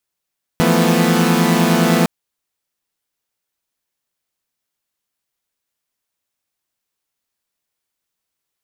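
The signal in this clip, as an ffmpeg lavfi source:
-f lavfi -i "aevalsrc='0.178*((2*mod(164.81*t,1)-1)+(2*mod(174.61*t,1)-1)+(2*mod(220*t,1)-1)+(2*mod(246.94*t,1)-1))':d=1.46:s=44100"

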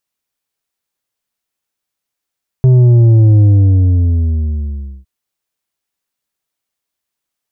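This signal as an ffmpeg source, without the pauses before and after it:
-f lavfi -i "aevalsrc='0.562*clip((2.41-t)/1.63,0,1)*tanh(2.11*sin(2*PI*130*2.41/log(65/130)*(exp(log(65/130)*t/2.41)-1)))/tanh(2.11)':d=2.41:s=44100"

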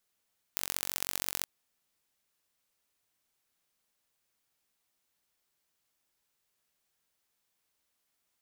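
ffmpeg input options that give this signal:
-f lavfi -i "aevalsrc='0.708*eq(mod(n,957),0)*(0.5+0.5*eq(mod(n,2871),0))':d=0.88:s=44100"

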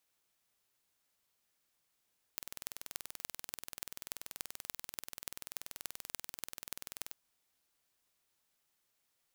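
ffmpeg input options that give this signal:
-f lavfi -i "aevalsrc='0.316*eq(mod(n,2130),0)*(0.5+0.5*eq(mod(n,12780),0))':d=4.76:s=44100"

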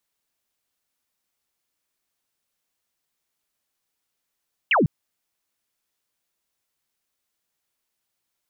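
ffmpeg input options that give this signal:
-f lavfi -i "aevalsrc='0.178*clip(t/0.002,0,1)*clip((0.15-t)/0.002,0,1)*sin(2*PI*3100*0.15/log(120/3100)*(exp(log(120/3100)*t/0.15)-1))':d=0.15:s=44100"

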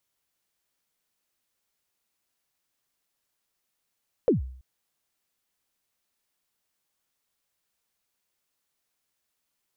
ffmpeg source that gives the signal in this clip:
-f lavfi -i "aevalsrc='0.188*pow(10,-3*t/0.58)*sin(2*PI*(550*0.132/log(64/550)*(exp(log(64/550)*min(t,0.132)/0.132)-1)+64*max(t-0.132,0)))':d=0.33:s=44100"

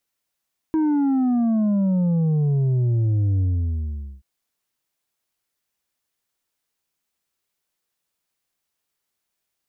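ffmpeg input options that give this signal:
-f lavfi -i "aevalsrc='0.133*clip((3.48-t)/0.82,0,1)*tanh(1.78*sin(2*PI*320*3.48/log(65/320)*(exp(log(65/320)*t/3.48)-1)))/tanh(1.78)':d=3.48:s=44100"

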